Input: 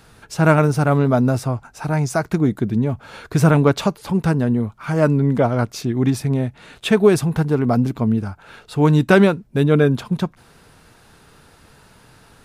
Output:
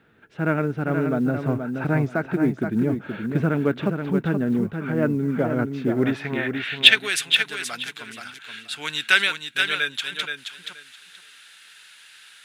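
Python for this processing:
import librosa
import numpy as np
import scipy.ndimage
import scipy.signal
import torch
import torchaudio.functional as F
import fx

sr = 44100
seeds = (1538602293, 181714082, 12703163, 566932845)

p1 = fx.filter_sweep_bandpass(x, sr, from_hz=310.0, to_hz=7700.0, start_s=5.84, end_s=7.11, q=1.1)
p2 = fx.rider(p1, sr, range_db=10, speed_s=0.5)
p3 = fx.band_shelf(p2, sr, hz=2300.0, db=14.5, octaves=1.7)
p4 = fx.quant_companded(p3, sr, bits=8)
p5 = p4 + fx.echo_feedback(p4, sr, ms=476, feedback_pct=19, wet_db=-6.5, dry=0)
y = p5 * 10.0 ** (-1.5 / 20.0)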